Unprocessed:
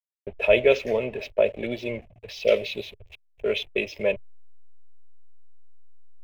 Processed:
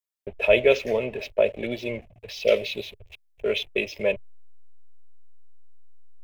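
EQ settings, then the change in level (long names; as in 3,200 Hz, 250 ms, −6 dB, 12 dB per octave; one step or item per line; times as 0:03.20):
high-shelf EQ 4,900 Hz +4.5 dB
0.0 dB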